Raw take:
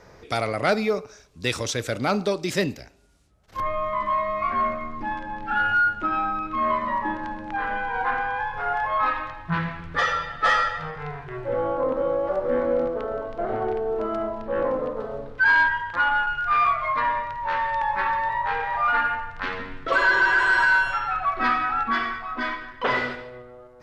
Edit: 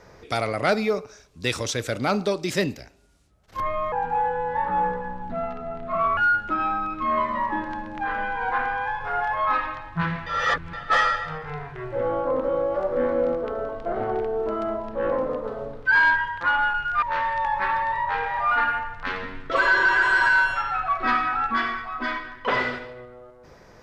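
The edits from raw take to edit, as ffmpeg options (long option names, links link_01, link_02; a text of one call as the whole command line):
ffmpeg -i in.wav -filter_complex "[0:a]asplit=6[link_01][link_02][link_03][link_04][link_05][link_06];[link_01]atrim=end=3.924[link_07];[link_02]atrim=start=3.92:end=5.7,asetpts=PTS-STARTPTS,asetrate=34839,aresample=44100[link_08];[link_03]atrim=start=5.696:end=9.792[link_09];[link_04]atrim=start=9.788:end=10.262,asetpts=PTS-STARTPTS,areverse[link_10];[link_05]atrim=start=10.258:end=16.552[link_11];[link_06]atrim=start=17.388[link_12];[link_07][link_08]acrossfade=duration=0.004:curve1=hsin:curve2=hsin[link_13];[link_13][link_09]acrossfade=duration=0.004:curve1=hsin:curve2=hsin[link_14];[link_14][link_10]acrossfade=duration=0.004:curve1=hsin:curve2=hsin[link_15];[link_15][link_11]acrossfade=duration=0.004:curve1=hsin:curve2=hsin[link_16];[link_16][link_12]acrossfade=duration=0.004:curve1=hsin:curve2=hsin" out.wav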